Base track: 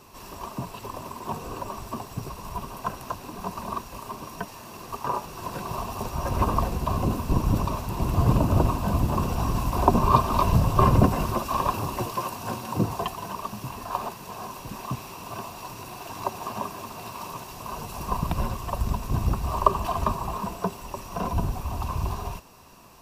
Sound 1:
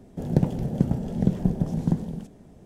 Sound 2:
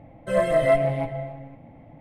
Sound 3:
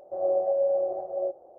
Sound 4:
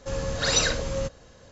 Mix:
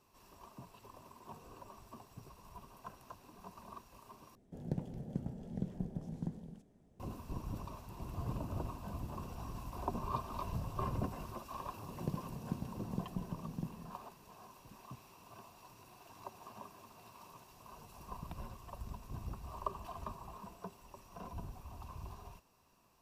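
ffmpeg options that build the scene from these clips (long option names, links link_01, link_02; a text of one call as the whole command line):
ffmpeg -i bed.wav -i cue0.wav -filter_complex "[1:a]asplit=2[link_01][link_02];[0:a]volume=-19.5dB,asplit=2[link_03][link_04];[link_03]atrim=end=4.354[link_05];[link_01]atrim=end=2.65,asetpts=PTS-STARTPTS,volume=-17dB[link_06];[link_04]atrim=start=6.996[link_07];[link_02]atrim=end=2.65,asetpts=PTS-STARTPTS,volume=-18dB,afade=type=in:duration=0.004:curve=hsin,afade=type=out:start_time=2.646:duration=0.004:curve=hsin,adelay=11710[link_08];[link_05][link_06]acrossfade=duration=0.004:curve1=hsin:curve2=hsin[link_09];[link_09][link_07]acrossfade=duration=0.004:curve1=hsin:curve2=hsin[link_10];[link_10][link_08]amix=inputs=2:normalize=0" out.wav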